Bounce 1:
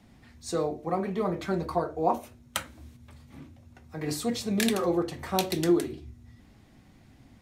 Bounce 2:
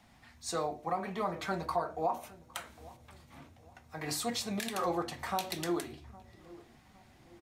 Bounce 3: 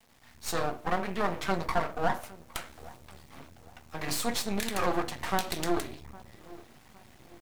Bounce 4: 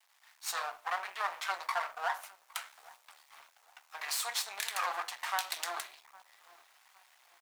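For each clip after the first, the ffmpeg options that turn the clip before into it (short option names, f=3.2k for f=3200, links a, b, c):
-filter_complex "[0:a]lowshelf=f=570:t=q:w=1.5:g=-7.5,alimiter=limit=-21dB:level=0:latency=1:release=149,asplit=2[a][b];[b]adelay=811,lowpass=f=860:p=1,volume=-19dB,asplit=2[c][d];[d]adelay=811,lowpass=f=860:p=1,volume=0.49,asplit=2[e][f];[f]adelay=811,lowpass=f=860:p=1,volume=0.49,asplit=2[g][h];[h]adelay=811,lowpass=f=860:p=1,volume=0.49[i];[a][c][e][g][i]amix=inputs=5:normalize=0"
-af "dynaudnorm=f=200:g=3:m=8dB,aeval=exprs='max(val(0),0)':c=same,acrusher=bits=9:mix=0:aa=0.000001"
-filter_complex "[0:a]highpass=f=840:w=0.5412,highpass=f=840:w=1.3066,asplit=2[a][b];[b]aeval=exprs='sgn(val(0))*max(abs(val(0))-0.0015,0)':c=same,volume=-5.5dB[c];[a][c]amix=inputs=2:normalize=0,volume=-4.5dB"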